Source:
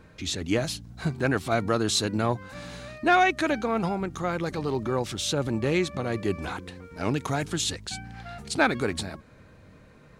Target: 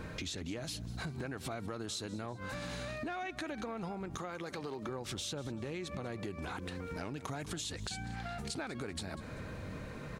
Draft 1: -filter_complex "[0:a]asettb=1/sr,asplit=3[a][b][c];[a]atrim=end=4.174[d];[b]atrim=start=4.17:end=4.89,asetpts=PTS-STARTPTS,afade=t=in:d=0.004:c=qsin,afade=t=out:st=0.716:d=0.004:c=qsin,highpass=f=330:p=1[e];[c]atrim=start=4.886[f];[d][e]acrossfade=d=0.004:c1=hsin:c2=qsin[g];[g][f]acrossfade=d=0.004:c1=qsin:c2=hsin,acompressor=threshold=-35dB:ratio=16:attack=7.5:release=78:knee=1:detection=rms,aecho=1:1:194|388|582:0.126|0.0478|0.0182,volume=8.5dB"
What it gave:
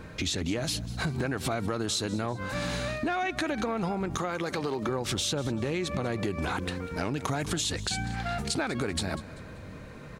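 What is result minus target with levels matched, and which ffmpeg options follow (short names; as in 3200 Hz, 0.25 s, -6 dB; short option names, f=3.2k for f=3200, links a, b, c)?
compressor: peak gain reduction -10.5 dB
-filter_complex "[0:a]asettb=1/sr,asplit=3[a][b][c];[a]atrim=end=4.174[d];[b]atrim=start=4.17:end=4.89,asetpts=PTS-STARTPTS,afade=t=in:d=0.004:c=qsin,afade=t=out:st=0.716:d=0.004:c=qsin,highpass=f=330:p=1[e];[c]atrim=start=4.886[f];[d][e]acrossfade=d=0.004:c1=hsin:c2=qsin[g];[g][f]acrossfade=d=0.004:c1=qsin:c2=hsin,acompressor=threshold=-46dB:ratio=16:attack=7.5:release=78:knee=1:detection=rms,aecho=1:1:194|388|582:0.126|0.0478|0.0182,volume=8.5dB"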